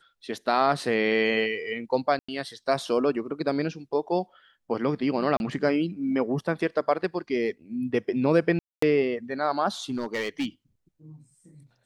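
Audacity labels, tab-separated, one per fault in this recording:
2.190000	2.290000	dropout 95 ms
5.370000	5.400000	dropout 31 ms
8.590000	8.820000	dropout 234 ms
9.900000	10.460000	clipped -23.5 dBFS

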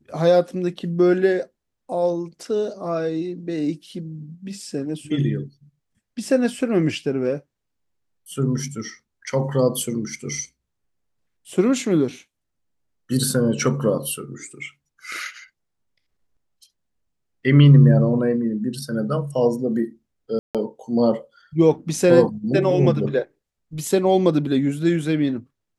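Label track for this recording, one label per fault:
20.390000	20.550000	dropout 157 ms

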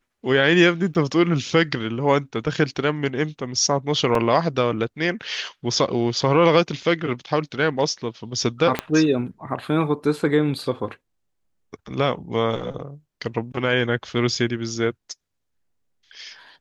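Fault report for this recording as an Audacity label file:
0.940000	0.950000	dropout 9.2 ms
4.150000	4.150000	dropout 2.8 ms
8.790000	8.790000	pop -7 dBFS

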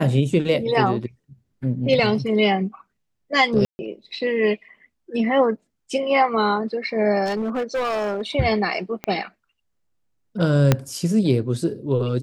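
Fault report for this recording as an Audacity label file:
3.650000	3.790000	dropout 140 ms
7.250000	8.220000	clipped -20.5 dBFS
9.040000	9.040000	pop -13 dBFS
10.720000	10.720000	pop -2 dBFS

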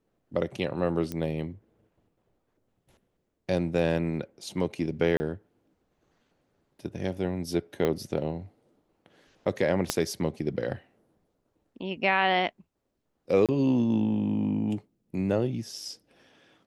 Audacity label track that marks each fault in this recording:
1.120000	1.120000	pop -19 dBFS
5.170000	5.200000	dropout 30 ms
7.850000	7.850000	pop -14 dBFS
9.900000	9.900000	pop -8 dBFS
13.460000	13.490000	dropout 27 ms

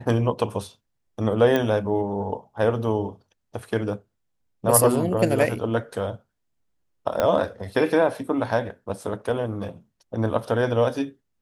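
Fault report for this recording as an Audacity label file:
1.560000	1.560000	pop -11 dBFS
7.200000	7.200000	pop -9 dBFS

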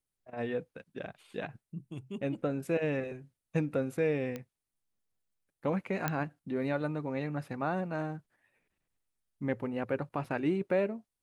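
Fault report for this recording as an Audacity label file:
4.360000	4.360000	pop -24 dBFS
6.080000	6.080000	pop -15 dBFS
10.250000	10.250000	dropout 2.9 ms

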